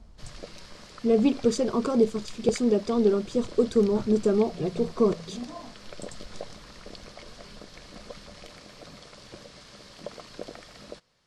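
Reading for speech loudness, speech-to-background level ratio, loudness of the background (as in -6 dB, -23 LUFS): -25.0 LUFS, 20.0 dB, -45.0 LUFS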